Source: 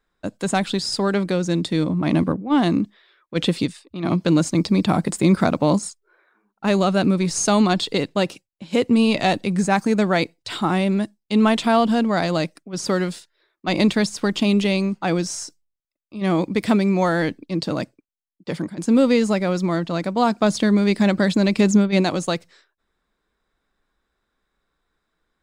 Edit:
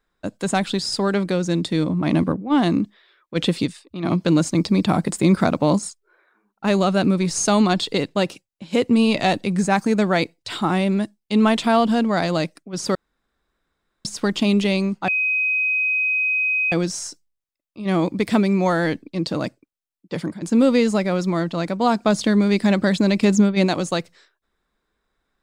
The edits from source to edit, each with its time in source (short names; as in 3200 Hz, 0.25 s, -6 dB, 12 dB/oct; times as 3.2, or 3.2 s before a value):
12.95–14.05 room tone
15.08 add tone 2520 Hz -17.5 dBFS 1.64 s